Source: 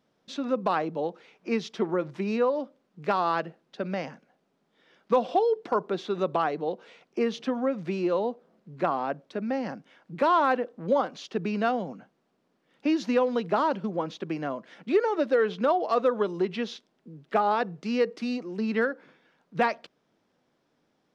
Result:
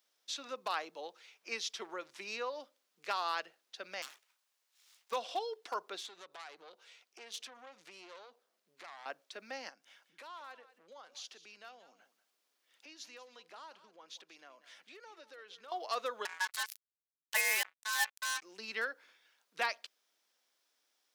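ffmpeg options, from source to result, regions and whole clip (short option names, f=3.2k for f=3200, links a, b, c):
-filter_complex "[0:a]asettb=1/sr,asplit=3[a][b][c];[a]atrim=end=4.024[d];[b]atrim=start=4.02:end=5.12,asetpts=PTS-STARTPTS,afade=t=in:d=0.004:c=qsin,afade=t=out:st=1.096:d=0.004:c=qsin,highpass=f=80:w=0.5412,highpass=f=80:w=1.3066,lowshelf=f=200:g=-6.5,aeval=exprs='abs(val(0))':c=same[e];[c]atrim=start=5.116[f];[d][e]acrossfade=d=0.004:c1=hsin:c2=qsin[g];[g][f]acrossfade=d=0.004:c1=qsin:c2=hsin,asettb=1/sr,asplit=3[h][i][j];[h]atrim=end=5.984[k];[i]atrim=start=5.98:end=9.06,asetpts=PTS-STARTPTS,afade=t=in:d=0.004:c=qsin,afade=t=out:st=3.076:d=0.004:c=qsin,acompressor=threshold=-34dB:ratio=2.5:attack=3.2:release=140:knee=1:detection=peak,aeval=exprs='(tanh(44.7*val(0)+0.65)-tanh(0.65))/44.7':c=same[l];[j]atrim=start=9.056[m];[k][l]acrossfade=d=0.004:c1=hsin:c2=qsin[n];[n][m]acrossfade=d=0.004:c1=qsin:c2=hsin,asettb=1/sr,asplit=3[o][p][q];[o]atrim=end=9.694[r];[p]atrim=start=9.69:end=15.72,asetpts=PTS-STARTPTS,afade=t=in:d=0.004:c=qsin,afade=t=out:st=6.026:d=0.004:c=qsin,acompressor=threshold=-50dB:ratio=2:attack=3.2:release=140:knee=1:detection=peak,aecho=1:1:188:0.178,atrim=end_sample=265923[s];[q]atrim=start=15.716[t];[r][s]acrossfade=d=0.004:c1=hsin:c2=qsin[u];[u][t]acrossfade=d=0.004:c1=qsin:c2=hsin,asettb=1/sr,asplit=3[v][w][x];[v]atrim=end=16.254[y];[w]atrim=start=16.25:end=18.42,asetpts=PTS-STARTPTS,afade=t=in:d=0.004:c=qsin,afade=t=out:st=2.166:d=0.004:c=qsin,acrusher=bits=4:mix=0:aa=0.5,aeval=exprs='val(0)*sin(2*PI*1300*n/s)':c=same[z];[x]atrim=start=18.416[aa];[y][z]acrossfade=d=0.004:c1=hsin:c2=qsin[ab];[ab][aa]acrossfade=d=0.004:c1=qsin:c2=hsin,highpass=290,aderivative,volume=7dB"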